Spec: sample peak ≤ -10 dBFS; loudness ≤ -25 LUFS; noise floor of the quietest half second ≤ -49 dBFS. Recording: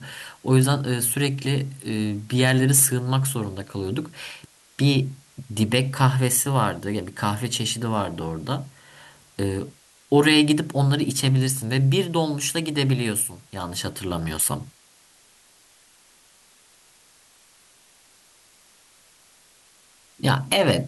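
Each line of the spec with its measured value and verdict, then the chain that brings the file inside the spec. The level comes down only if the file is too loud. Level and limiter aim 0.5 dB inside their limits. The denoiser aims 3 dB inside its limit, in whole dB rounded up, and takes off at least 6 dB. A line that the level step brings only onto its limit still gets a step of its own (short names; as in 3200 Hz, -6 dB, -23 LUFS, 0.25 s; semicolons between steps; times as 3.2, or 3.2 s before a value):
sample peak -4.0 dBFS: fail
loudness -22.5 LUFS: fail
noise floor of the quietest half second -56 dBFS: OK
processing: gain -3 dB; limiter -10.5 dBFS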